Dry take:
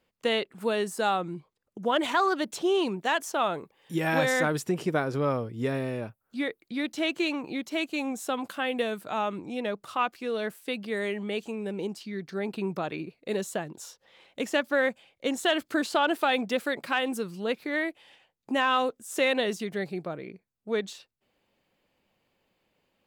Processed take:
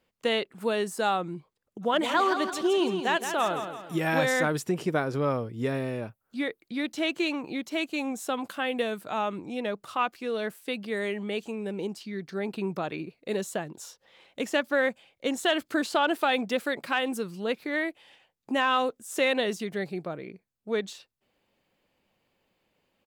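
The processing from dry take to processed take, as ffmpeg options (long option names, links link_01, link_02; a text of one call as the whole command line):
ffmpeg -i in.wav -filter_complex "[0:a]asplit=3[link_01][link_02][link_03];[link_01]afade=type=out:start_time=1.81:duration=0.02[link_04];[link_02]aecho=1:1:167|334|501|668|835:0.398|0.171|0.0736|0.0317|0.0136,afade=type=in:start_time=1.81:duration=0.02,afade=type=out:start_time=4.05:duration=0.02[link_05];[link_03]afade=type=in:start_time=4.05:duration=0.02[link_06];[link_04][link_05][link_06]amix=inputs=3:normalize=0" out.wav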